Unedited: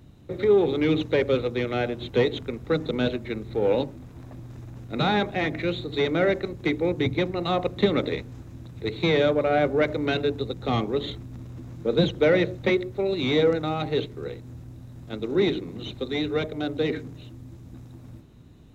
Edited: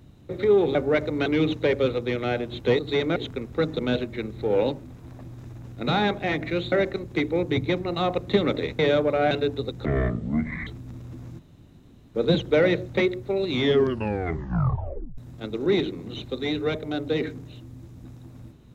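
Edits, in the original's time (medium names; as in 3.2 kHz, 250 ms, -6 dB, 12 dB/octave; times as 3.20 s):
5.84–6.21 s: move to 2.28 s
8.28–9.10 s: delete
9.62–10.13 s: move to 0.75 s
10.67–11.12 s: speed 55%
11.84 s: insert room tone 0.76 s
13.24 s: tape stop 1.63 s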